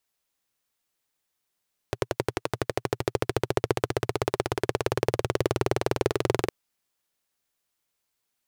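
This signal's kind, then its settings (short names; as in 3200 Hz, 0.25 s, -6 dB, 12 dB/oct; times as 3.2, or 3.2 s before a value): single-cylinder engine model, changing speed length 4.56 s, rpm 1300, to 2600, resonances 120/390 Hz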